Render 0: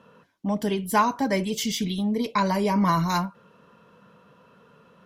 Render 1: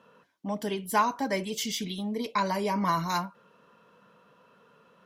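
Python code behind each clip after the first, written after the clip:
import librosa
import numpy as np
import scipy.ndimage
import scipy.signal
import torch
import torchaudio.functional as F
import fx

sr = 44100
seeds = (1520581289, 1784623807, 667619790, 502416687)

y = fx.low_shelf(x, sr, hz=180.0, db=-11.0)
y = F.gain(torch.from_numpy(y), -3.0).numpy()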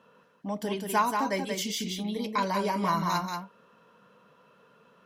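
y = x + 10.0 ** (-5.0 / 20.0) * np.pad(x, (int(183 * sr / 1000.0), 0))[:len(x)]
y = F.gain(torch.from_numpy(y), -1.0).numpy()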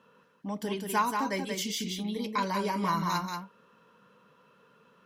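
y = fx.peak_eq(x, sr, hz=670.0, db=-6.5, octaves=0.44)
y = F.gain(torch.from_numpy(y), -1.0).numpy()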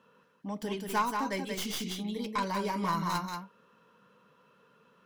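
y = fx.tracing_dist(x, sr, depth_ms=0.081)
y = F.gain(torch.from_numpy(y), -2.0).numpy()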